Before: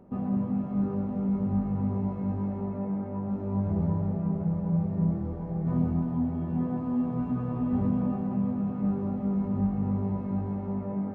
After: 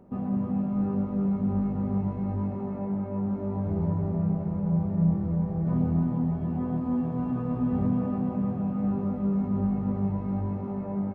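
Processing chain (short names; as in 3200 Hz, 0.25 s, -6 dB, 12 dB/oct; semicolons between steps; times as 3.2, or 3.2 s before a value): feedback echo 0.311 s, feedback 58%, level -7 dB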